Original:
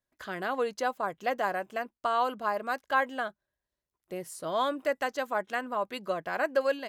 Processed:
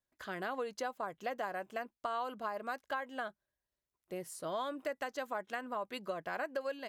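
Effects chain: compression 6:1, threshold -30 dBFS, peak gain reduction 10.5 dB; trim -4 dB

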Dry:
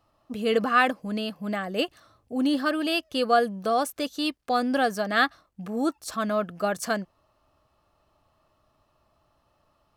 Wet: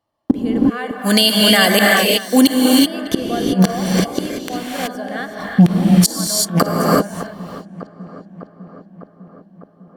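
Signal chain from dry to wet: 0.90–2.57 s: pre-emphasis filter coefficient 0.9; gate -57 dBFS, range -42 dB; dynamic bell 4.1 kHz, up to -6 dB, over -41 dBFS, Q 0.85; in parallel at +1 dB: compression 5:1, threshold -30 dBFS, peak gain reduction 13 dB; on the sum: comb of notches 1.3 kHz; inverted gate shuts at -24 dBFS, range -36 dB; on a send: filtered feedback delay 602 ms, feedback 70%, low-pass 2.4 kHz, level -20 dB; on the sum: gated-style reverb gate 400 ms rising, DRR 0.5 dB; loudness maximiser +30.5 dB; trim -1 dB

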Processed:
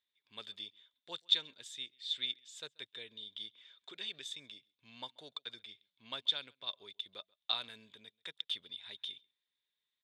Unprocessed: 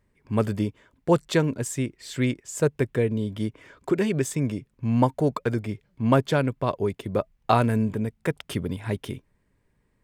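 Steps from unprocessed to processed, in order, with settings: band-pass filter 3.6 kHz, Q 16; echo from a far wall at 23 m, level -27 dB; trim +10.5 dB

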